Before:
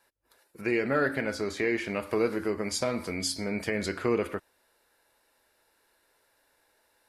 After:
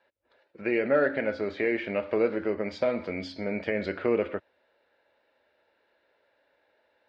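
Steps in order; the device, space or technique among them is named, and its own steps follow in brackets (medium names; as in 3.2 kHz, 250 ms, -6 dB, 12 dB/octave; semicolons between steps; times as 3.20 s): guitar cabinet (cabinet simulation 83–3500 Hz, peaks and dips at 130 Hz -8 dB, 570 Hz +8 dB, 1.1 kHz -5 dB)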